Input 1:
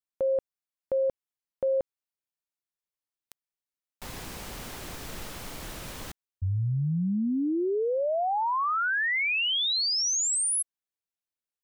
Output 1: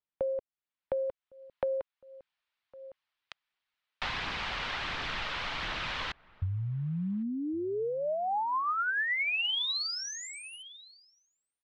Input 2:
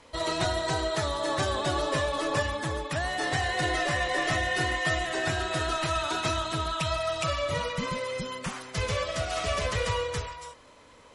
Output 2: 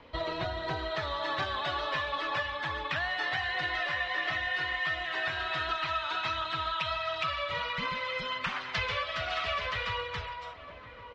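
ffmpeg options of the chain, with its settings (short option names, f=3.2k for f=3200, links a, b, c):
-filter_complex "[0:a]lowpass=f=3.8k:w=0.5412,lowpass=f=3.8k:w=1.3066,acrossover=split=480|810[a][b][c];[c]dynaudnorm=f=140:g=17:m=14.5dB[d];[a][b][d]amix=inputs=3:normalize=0,asplit=2[e][f];[f]adelay=1108,volume=-25dB,highshelf=f=4k:g=-24.9[g];[e][g]amix=inputs=2:normalize=0,aphaser=in_gain=1:out_gain=1:delay=2.2:decay=0.23:speed=1.4:type=triangular,acompressor=threshold=-32dB:ratio=5:attack=45:release=837:knee=6:detection=peak"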